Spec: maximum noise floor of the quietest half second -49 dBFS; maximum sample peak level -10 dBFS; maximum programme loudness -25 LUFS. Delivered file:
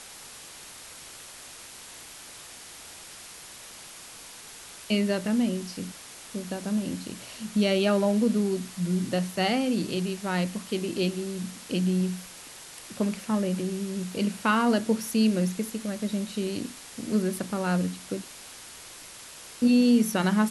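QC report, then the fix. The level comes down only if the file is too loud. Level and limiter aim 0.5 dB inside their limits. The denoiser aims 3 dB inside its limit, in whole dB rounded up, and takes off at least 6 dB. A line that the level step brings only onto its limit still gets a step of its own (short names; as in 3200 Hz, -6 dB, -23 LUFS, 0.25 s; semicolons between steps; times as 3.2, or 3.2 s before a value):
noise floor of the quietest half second -45 dBFS: fail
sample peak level -11.5 dBFS: OK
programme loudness -27.0 LUFS: OK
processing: denoiser 7 dB, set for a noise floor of -45 dBFS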